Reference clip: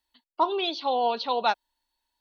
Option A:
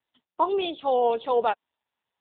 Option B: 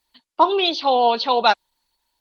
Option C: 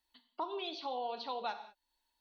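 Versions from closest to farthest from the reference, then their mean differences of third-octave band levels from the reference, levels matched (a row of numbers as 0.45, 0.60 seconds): B, C, A; 1.5, 2.5, 6.0 decibels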